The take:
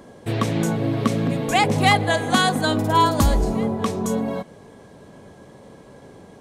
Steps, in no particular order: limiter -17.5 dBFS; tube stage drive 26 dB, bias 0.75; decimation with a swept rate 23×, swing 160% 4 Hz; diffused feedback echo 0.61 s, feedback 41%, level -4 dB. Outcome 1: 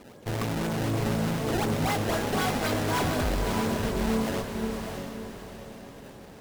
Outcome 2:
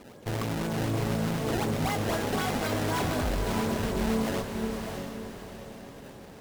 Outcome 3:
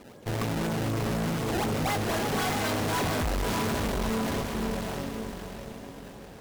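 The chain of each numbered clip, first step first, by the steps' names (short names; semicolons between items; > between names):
decimation with a swept rate > tube stage > limiter > diffused feedback echo; decimation with a swept rate > limiter > tube stage > diffused feedback echo; decimation with a swept rate > diffused feedback echo > tube stage > limiter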